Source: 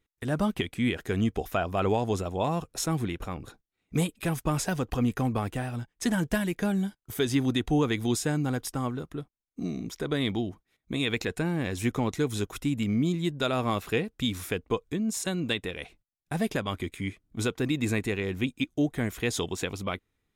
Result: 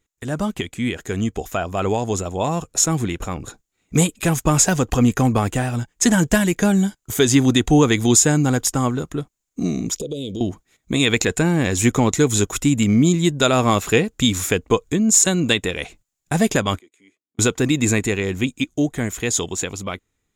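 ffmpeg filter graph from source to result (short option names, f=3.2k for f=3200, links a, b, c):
-filter_complex "[0:a]asettb=1/sr,asplit=3[a][b][c];[a]atrim=end=9.974[d];[b]atrim=start=9.97:end=10.41,asetpts=PTS-STARTPTS,afade=t=in:d=0.004:c=qsin,afade=t=out:st=0.436:d=0.004:c=qsin,asuperstop=centerf=1300:order=12:qfactor=0.62,equalizer=f=490:w=3.4:g=9,acompressor=threshold=-37dB:ratio=4:attack=3.2:release=140:knee=1:detection=peak[e];[c]atrim=start=10.406[f];[d][e]acrossfade=d=0.004:c1=hsin:c2=qsin[g];[g][f]acrossfade=d=0.004:c1=qsin:c2=hsin,asettb=1/sr,asplit=3[h][i][j];[h]atrim=end=16.794[k];[i]atrim=start=16.79:end=17.39,asetpts=PTS-STARTPTS,afade=t=in:d=0.004:c=qsin,afade=t=out:st=0.596:d=0.004:c=qsin,bandpass=f=360:t=q:w=1.3,aderivative[l];[j]atrim=start=17.386[m];[k][l]acrossfade=d=0.004:c1=hsin:c2=qsin[n];[n][m]acrossfade=d=0.004:c1=qsin:c2=hsin,equalizer=f=7k:t=o:w=0.32:g=14,dynaudnorm=f=690:g=9:m=7.5dB,volume=3.5dB"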